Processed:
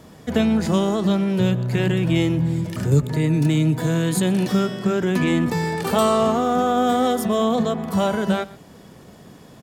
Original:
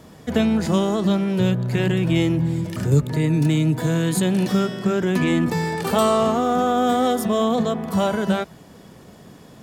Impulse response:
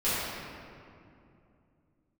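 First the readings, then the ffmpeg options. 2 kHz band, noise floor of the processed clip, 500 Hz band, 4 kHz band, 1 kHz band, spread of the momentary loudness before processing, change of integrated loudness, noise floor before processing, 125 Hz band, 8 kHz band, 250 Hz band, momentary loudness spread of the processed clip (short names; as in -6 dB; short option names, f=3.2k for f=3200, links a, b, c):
0.0 dB, -45 dBFS, 0.0 dB, 0.0 dB, 0.0 dB, 4 LU, 0.0 dB, -45 dBFS, 0.0 dB, 0.0 dB, 0.0 dB, 4 LU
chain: -filter_complex "[0:a]asplit=2[a][b];[b]adelay=122.4,volume=-20dB,highshelf=f=4k:g=-2.76[c];[a][c]amix=inputs=2:normalize=0"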